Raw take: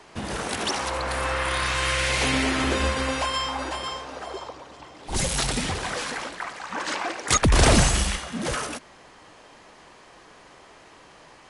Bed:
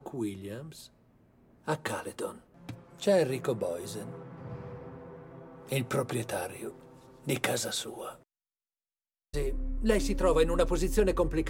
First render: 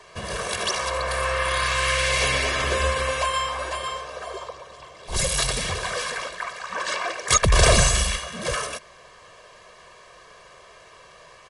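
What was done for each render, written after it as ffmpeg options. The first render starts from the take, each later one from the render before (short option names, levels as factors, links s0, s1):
-af "lowshelf=f=470:g=-4,aecho=1:1:1.8:0.83"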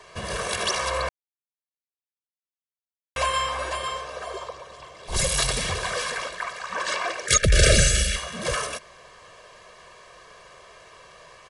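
-filter_complex "[0:a]asettb=1/sr,asplit=3[s0][s1][s2];[s0]atrim=end=7.264[s3];[s1]atrim=start=7.26:end=8.16,asetpts=PTS-STARTPTS,afade=t=in:d=0.004:c=qsin,afade=t=out:st=0.896:d=0.004:c=qsin,asuperstop=centerf=900:order=12:qfactor=1.4[s4];[s2]atrim=start=8.156[s5];[s3][s4]acrossfade=d=0.004:c1=hsin:c2=qsin[s6];[s6][s5]acrossfade=d=0.004:c1=qsin:c2=hsin,asplit=3[s7][s8][s9];[s7]atrim=end=1.09,asetpts=PTS-STARTPTS,afade=t=out:st=1.086:d=0.004:c=hsin[s10];[s8]atrim=start=1.09:end=3.16,asetpts=PTS-STARTPTS,volume=0[s11];[s9]atrim=start=3.16,asetpts=PTS-STARTPTS,afade=t=in:d=0.004:c=hsin[s12];[s10][s11][s12]concat=n=3:v=0:a=1"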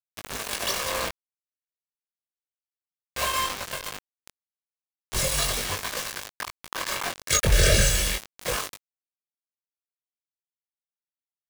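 -af "acrusher=bits=3:mix=0:aa=0.000001,flanger=delay=19.5:depth=2.5:speed=0.33"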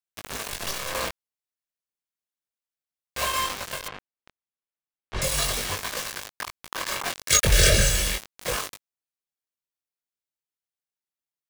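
-filter_complex "[0:a]asettb=1/sr,asplit=3[s0][s1][s2];[s0]atrim=end=0.494[s3];[s1]atrim=start=0.49:end=0.95,asetpts=PTS-STARTPTS,afade=t=in:d=0.004:c=qsin,afade=t=out:st=0.456:d=0.004:c=qsin,aeval=exprs='max(val(0),0)':c=same[s4];[s2]atrim=start=0.946[s5];[s3][s4]acrossfade=d=0.004:c1=hsin:c2=qsin[s6];[s6][s5]acrossfade=d=0.004:c1=qsin:c2=hsin,asettb=1/sr,asplit=3[s7][s8][s9];[s7]atrim=end=3.884[s10];[s8]atrim=start=3.88:end=5.22,asetpts=PTS-STARTPTS,afade=t=in:d=0.004:c=qsin,afade=t=out:st=1.336:d=0.004:c=qsin,lowpass=2700[s11];[s9]atrim=start=5.216[s12];[s10][s11]acrossfade=d=0.004:c1=hsin:c2=qsin[s13];[s13][s12]acrossfade=d=0.004:c1=qsin:c2=hsin,asettb=1/sr,asplit=3[s14][s15][s16];[s14]atrim=end=7.024[s17];[s15]atrim=start=7.02:end=7.7,asetpts=PTS-STARTPTS,afade=t=in:d=0.004:c=qsin,afade=t=out:st=0.676:d=0.004:c=qsin,adynamicequalizer=threshold=0.0178:dfrequency=1700:dqfactor=0.7:tfrequency=1700:tqfactor=0.7:attack=5:release=100:ratio=0.375:range=2:mode=boostabove:tftype=highshelf[s18];[s16]atrim=start=7.696[s19];[s17][s18]acrossfade=d=0.004:c1=hsin:c2=qsin[s20];[s20][s19]acrossfade=d=0.004:c1=qsin:c2=hsin"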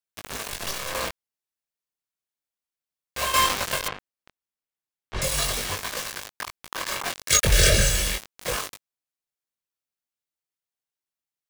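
-filter_complex "[0:a]asplit=3[s0][s1][s2];[s0]atrim=end=3.342[s3];[s1]atrim=start=3.338:end=3.932,asetpts=PTS-STARTPTS,volume=2.11[s4];[s2]atrim=start=3.928[s5];[s3][s4]acrossfade=d=0.004:c1=hsin:c2=hsin[s6];[s6][s5]acrossfade=d=0.004:c1=hsin:c2=hsin"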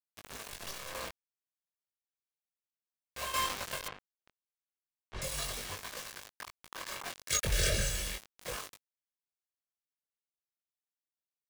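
-af "volume=0.251"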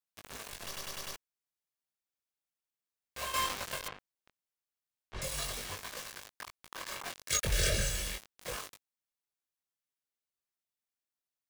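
-filter_complex "[0:a]asplit=6[s0][s1][s2][s3][s4][s5];[s0]atrim=end=0.762[s6];[s1]atrim=start=0.658:end=0.762[s7];[s2]atrim=start=0.658:end=0.762[s8];[s3]atrim=start=0.658:end=0.762[s9];[s4]atrim=start=0.658:end=0.762[s10];[s5]atrim=start=1.158[s11];[s6][s7]acrossfade=d=0.004:c1=hsin:c2=hsin[s12];[s12][s8]acrossfade=d=0.004:c1=hsin:c2=hsin[s13];[s13][s9]acrossfade=d=0.004:c1=hsin:c2=hsin[s14];[s14][s10]acrossfade=d=0.004:c1=hsin:c2=hsin[s15];[s15][s11]acrossfade=d=0.004:c1=hsin:c2=hsin"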